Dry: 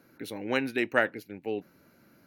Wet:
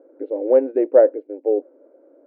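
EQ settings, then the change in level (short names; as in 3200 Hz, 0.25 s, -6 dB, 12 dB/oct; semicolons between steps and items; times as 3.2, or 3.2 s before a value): brick-wall FIR high-pass 260 Hz; synth low-pass 540 Hz, resonance Q 4.9; air absorption 230 m; +6.5 dB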